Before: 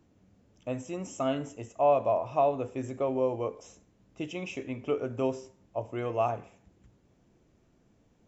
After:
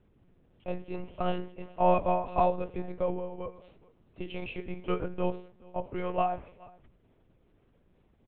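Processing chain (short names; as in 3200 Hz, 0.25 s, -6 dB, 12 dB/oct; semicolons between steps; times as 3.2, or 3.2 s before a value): 3.13–4.24 compressor 6:1, threshold -33 dBFS, peak gain reduction 10.5 dB; on a send: echo 0.422 s -24 dB; on the sum: monotone LPC vocoder at 8 kHz 180 Hz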